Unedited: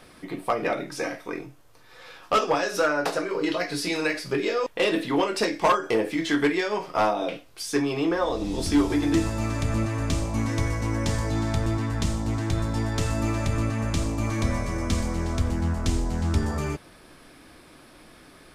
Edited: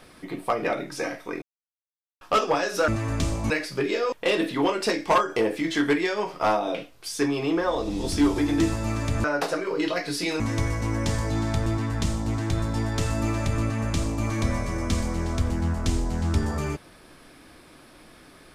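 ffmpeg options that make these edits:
-filter_complex "[0:a]asplit=7[a][b][c][d][e][f][g];[a]atrim=end=1.42,asetpts=PTS-STARTPTS,afade=t=out:st=1.416:d=0.004:c=hsin[h];[b]atrim=start=1.42:end=2.21,asetpts=PTS-STARTPTS,volume=0[i];[c]atrim=start=2.21:end=2.882,asetpts=PTS-STARTPTS,afade=t=in:d=0.004:c=hsin[j];[d]atrim=start=9.778:end=10.402[k];[e]atrim=start=4.038:end=9.782[l];[f]atrim=start=2.878:end=4.042[m];[g]atrim=start=10.398[n];[h][i][j]concat=n=3:v=0:a=1[o];[o][k]acrossfade=d=0.004:c1=hsin:c2=hsin[p];[p][l]acrossfade=d=0.004:c1=hsin:c2=hsin[q];[q][m]acrossfade=d=0.004:c1=hsin:c2=hsin[r];[r][n]acrossfade=d=0.004:c1=hsin:c2=hsin"

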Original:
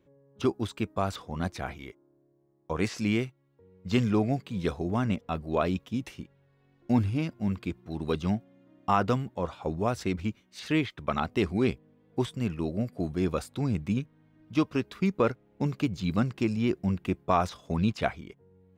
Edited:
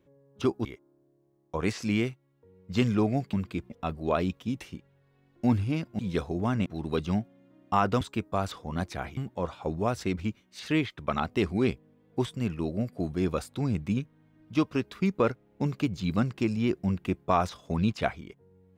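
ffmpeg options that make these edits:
-filter_complex "[0:a]asplit=8[a][b][c][d][e][f][g][h];[a]atrim=end=0.652[i];[b]atrim=start=1.808:end=4.492[j];[c]atrim=start=7.448:end=7.822[k];[d]atrim=start=5.158:end=7.452[l];[e]atrim=start=4.488:end=5.162[m];[f]atrim=start=7.818:end=9.172[n];[g]atrim=start=0.648:end=1.812[o];[h]atrim=start=9.168[p];[i][j]acrossfade=d=0.004:c1=hsin:c2=hsin[q];[q][k]acrossfade=d=0.004:c1=hsin:c2=hsin[r];[r][l]acrossfade=d=0.004:c1=hsin:c2=hsin[s];[s][m]acrossfade=d=0.004:c1=hsin:c2=hsin[t];[t][n]acrossfade=d=0.004:c1=hsin:c2=hsin[u];[u][o]acrossfade=d=0.004:c1=hsin:c2=hsin[v];[v][p]acrossfade=d=0.004:c1=hsin:c2=hsin"

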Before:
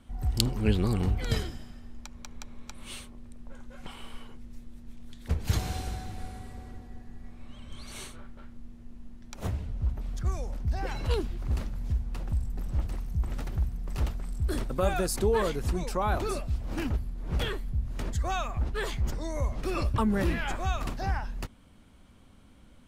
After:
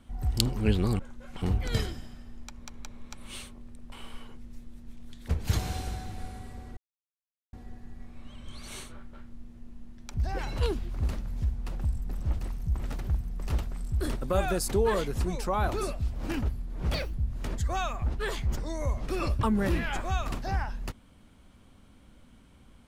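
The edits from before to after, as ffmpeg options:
-filter_complex "[0:a]asplit=8[a][b][c][d][e][f][g][h];[a]atrim=end=0.992[i];[b]atrim=start=3.488:end=3.922[j];[c]atrim=start=0.988:end=3.492[k];[d]atrim=start=3.918:end=6.77,asetpts=PTS-STARTPTS,afade=t=out:st=2.848:d=0.004:c=hsin,apad=pad_dur=0.76[l];[e]atrim=start=6.77:end=9.382,asetpts=PTS-STARTPTS,afade=t=in:d=0.004:c=hsin[m];[f]atrim=start=10.618:end=17.424[n];[g]atrim=start=17.42:end=17.68,asetpts=PTS-STARTPTS,asetrate=59976,aresample=44100[o];[h]atrim=start=17.676[p];[i][j]acrossfade=d=0.004:c1=hsin:c2=hsin[q];[q][k]acrossfade=d=0.004:c1=hsin:c2=hsin[r];[l][m]concat=n=2:v=0:a=1[s];[r][s]acrossfade=d=0.004:c1=hsin:c2=hsin[t];[t][n]acrossfade=d=0.004:c1=hsin:c2=hsin[u];[u][o]acrossfade=d=0.004:c1=hsin:c2=hsin[v];[v][p]acrossfade=d=0.004:c1=hsin:c2=hsin"

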